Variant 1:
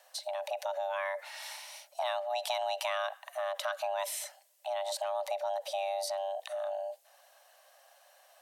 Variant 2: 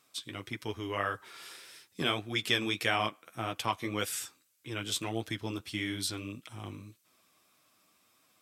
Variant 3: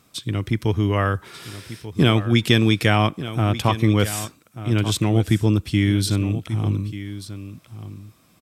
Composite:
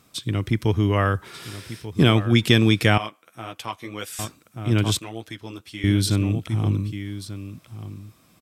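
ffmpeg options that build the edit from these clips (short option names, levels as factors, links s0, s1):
-filter_complex "[1:a]asplit=2[s0][s1];[2:a]asplit=3[s2][s3][s4];[s2]atrim=end=2.982[s5];[s0]atrim=start=2.978:end=4.192[s6];[s3]atrim=start=4.188:end=4.992[s7];[s1]atrim=start=4.988:end=5.842[s8];[s4]atrim=start=5.838[s9];[s5][s6]acrossfade=d=0.004:c1=hsin:c2=hsin[s10];[s10][s7]acrossfade=d=0.004:c1=hsin:c2=hsin[s11];[s11][s8]acrossfade=d=0.004:c1=hsin:c2=hsin[s12];[s12][s9]acrossfade=d=0.004:c1=hsin:c2=hsin"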